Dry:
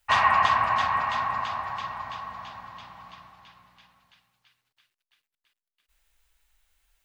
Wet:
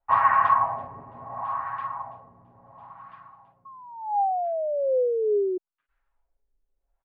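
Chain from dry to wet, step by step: comb 7.3 ms, depth 60%; painted sound fall, 3.65–5.58, 360–1100 Hz -23 dBFS; LFO low-pass sine 0.72 Hz 380–1500 Hz; gain -6 dB

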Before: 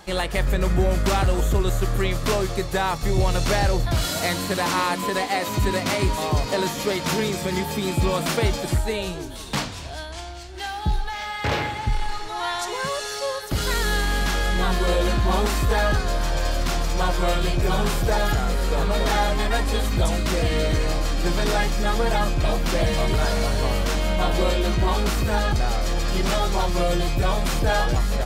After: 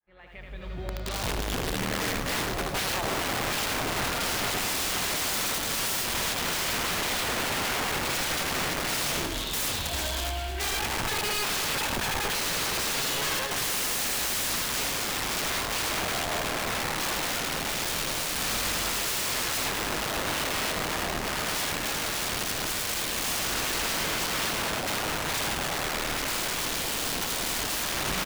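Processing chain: opening faded in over 5.84 s; 4.33–5.45 tone controls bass +9 dB, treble -5 dB; echo 79 ms -4 dB; dynamic EQ 120 Hz, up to +4 dB, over -34 dBFS, Q 1.3; soft clip -17 dBFS, distortion -13 dB; LFO low-pass sine 0.23 Hz 730–3900 Hz; wrapped overs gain 24.5 dB; lo-fi delay 0.106 s, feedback 80%, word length 10-bit, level -12 dB

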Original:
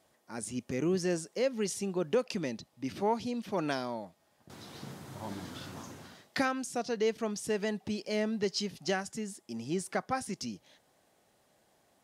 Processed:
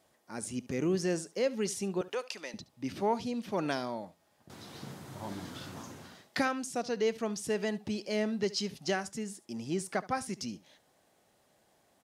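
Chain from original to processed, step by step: 2.01–2.54 HPF 710 Hz 12 dB/oct; on a send: echo 71 ms -19 dB

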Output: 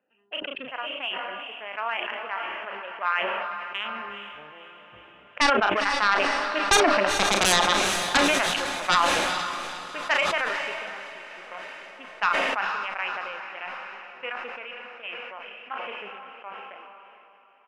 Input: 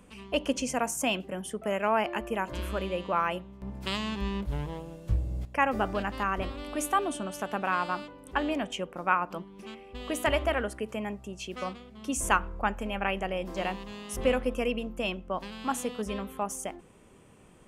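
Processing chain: Wiener smoothing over 41 samples; Doppler pass-by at 7.26, 11 m/s, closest 4.8 m; HPF 1200 Hz 12 dB/oct; reverb removal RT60 0.58 s; steep low-pass 3100 Hz 72 dB/oct; sine folder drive 15 dB, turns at -20.5 dBFS; doubler 35 ms -12.5 dB; diffused feedback echo 0.481 s, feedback 59%, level -10 dB; sustainer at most 21 dB/s; gain +7 dB

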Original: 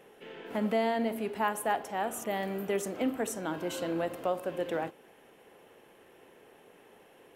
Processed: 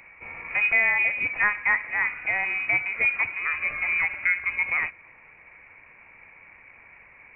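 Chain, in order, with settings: inverted band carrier 2700 Hz; gain +7 dB

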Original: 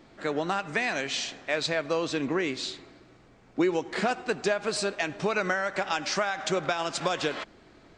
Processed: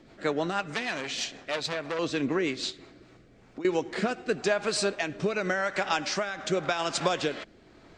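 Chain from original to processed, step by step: 2.7–3.65 compressor 6:1, threshold -42 dBFS, peak gain reduction 19.5 dB; rotary speaker horn 6.3 Hz, later 0.9 Hz, at 2.56; 0.74–1.99 core saturation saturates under 3000 Hz; gain +2.5 dB

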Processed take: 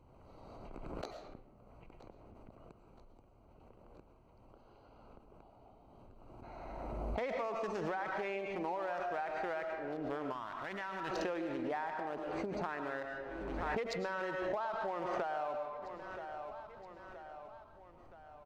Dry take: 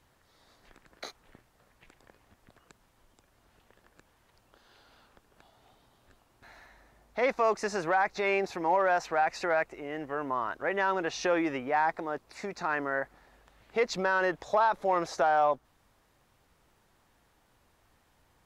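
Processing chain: Wiener smoothing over 25 samples; feedback echo 0.973 s, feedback 52%, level -24 dB; reverb RT60 0.70 s, pre-delay 70 ms, DRR 6 dB; compressor 6:1, threshold -40 dBFS, peak gain reduction 17.5 dB; 10.32–11.11 bell 470 Hz -12.5 dB 1 oct; backwards sustainer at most 22 dB/s; gain +3 dB

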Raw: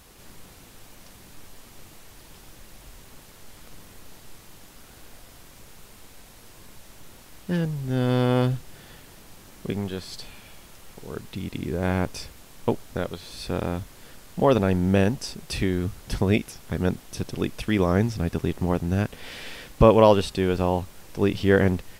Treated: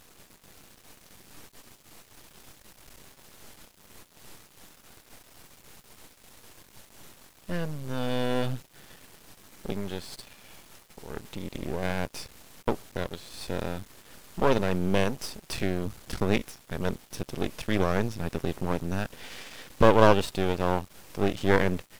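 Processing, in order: low shelf 80 Hz -9.5 dB; half-wave rectifier; gain +1 dB

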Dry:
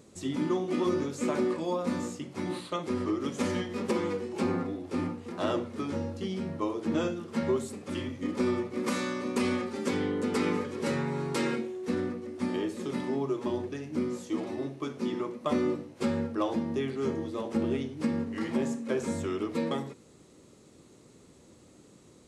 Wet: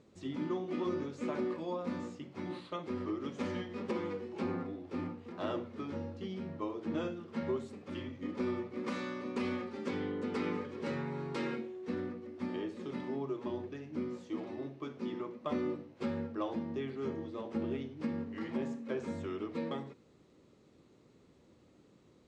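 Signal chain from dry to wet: LPF 4100 Hz 12 dB/oct; gain -7 dB

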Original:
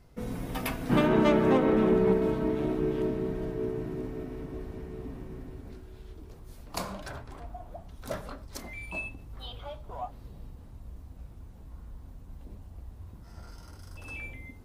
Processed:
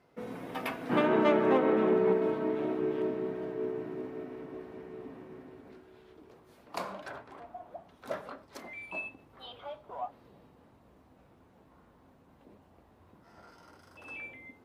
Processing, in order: HPF 150 Hz 12 dB/oct; tone controls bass -9 dB, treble -12 dB

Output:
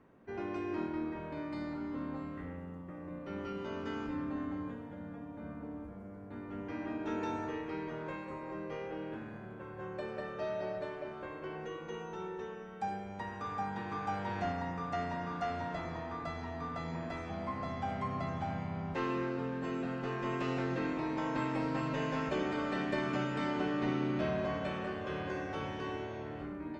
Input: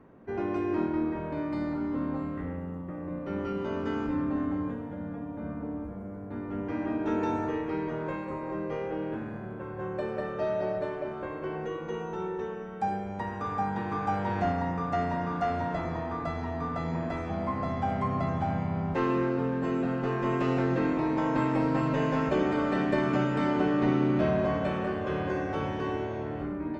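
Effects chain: bell 4600 Hz +7.5 dB 2.9 oct; gain -8.5 dB

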